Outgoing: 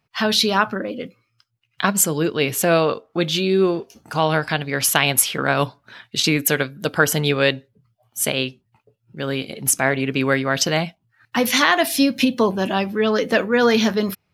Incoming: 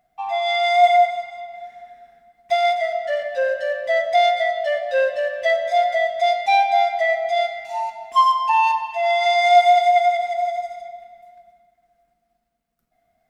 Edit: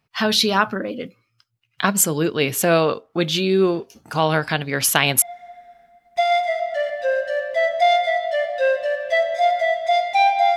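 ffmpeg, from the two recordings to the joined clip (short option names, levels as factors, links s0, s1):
-filter_complex "[0:a]apad=whole_dur=10.56,atrim=end=10.56,atrim=end=5.222[s0];[1:a]atrim=start=1.548:end=6.89[s1];[s0][s1]acrossfade=d=0.004:c1=hsin:c2=hsin"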